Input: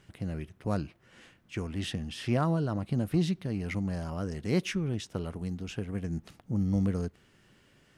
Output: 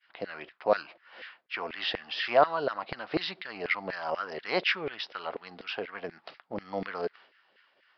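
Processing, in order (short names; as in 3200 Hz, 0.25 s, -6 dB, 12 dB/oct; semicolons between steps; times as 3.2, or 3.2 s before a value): LFO high-pass saw down 4.1 Hz 480–2000 Hz; expander -55 dBFS; downsampling 11025 Hz; gain +7 dB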